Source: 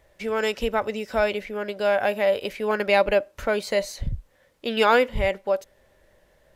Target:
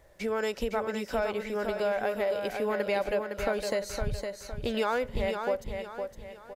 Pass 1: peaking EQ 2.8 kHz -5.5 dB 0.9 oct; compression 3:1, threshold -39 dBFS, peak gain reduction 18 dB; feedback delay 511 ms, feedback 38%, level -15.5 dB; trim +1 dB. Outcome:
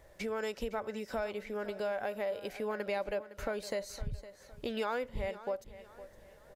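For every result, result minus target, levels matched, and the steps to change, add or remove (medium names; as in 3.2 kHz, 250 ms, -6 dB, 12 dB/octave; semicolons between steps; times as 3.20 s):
echo-to-direct -9.5 dB; compression: peak gain reduction +6 dB
change: feedback delay 511 ms, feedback 38%, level -6 dB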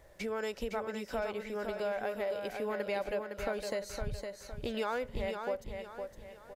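compression: peak gain reduction +6 dB
change: compression 3:1, threshold -30 dBFS, peak gain reduction 12 dB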